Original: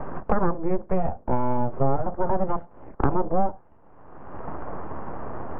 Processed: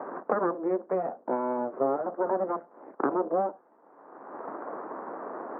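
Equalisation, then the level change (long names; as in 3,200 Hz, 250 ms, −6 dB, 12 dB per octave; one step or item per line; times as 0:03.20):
dynamic equaliser 850 Hz, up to −6 dB, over −41 dBFS, Q 3.3
high-pass filter 280 Hz 24 dB per octave
low-pass filter 1,800 Hz 24 dB per octave
0.0 dB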